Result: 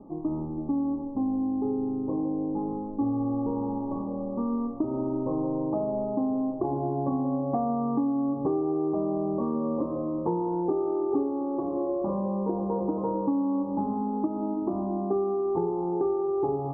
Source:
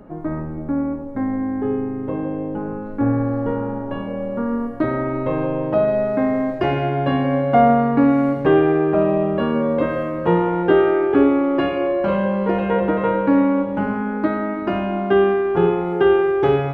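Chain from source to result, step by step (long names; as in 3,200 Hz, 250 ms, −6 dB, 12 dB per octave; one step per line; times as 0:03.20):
Chebyshev low-pass with heavy ripple 1,200 Hz, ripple 9 dB
downward compressor, threshold −23 dBFS, peak gain reduction 10.5 dB
0:11.08–0:12.02: double-tracking delay 38 ms −7 dB
level −1 dB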